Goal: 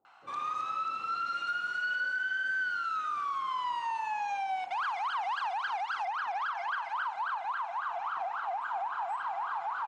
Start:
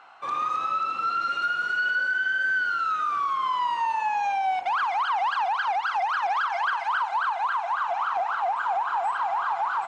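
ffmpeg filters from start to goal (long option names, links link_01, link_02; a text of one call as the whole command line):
ffmpeg -i in.wav -filter_complex "[0:a]asetnsamples=nb_out_samples=441:pad=0,asendcmd='6 highshelf g -4.5',highshelf=frequency=4000:gain=3.5,acrossover=split=480[link_01][link_02];[link_02]adelay=50[link_03];[link_01][link_03]amix=inputs=2:normalize=0,volume=-7.5dB" out.wav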